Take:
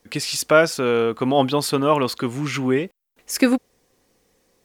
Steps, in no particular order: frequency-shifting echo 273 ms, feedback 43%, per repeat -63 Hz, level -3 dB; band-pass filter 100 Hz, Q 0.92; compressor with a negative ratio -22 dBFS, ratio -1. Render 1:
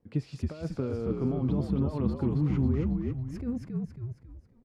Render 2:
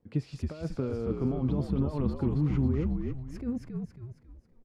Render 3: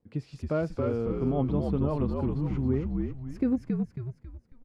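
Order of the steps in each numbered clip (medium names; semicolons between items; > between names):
compressor with a negative ratio > frequency-shifting echo > band-pass filter; compressor with a negative ratio > band-pass filter > frequency-shifting echo; band-pass filter > compressor with a negative ratio > frequency-shifting echo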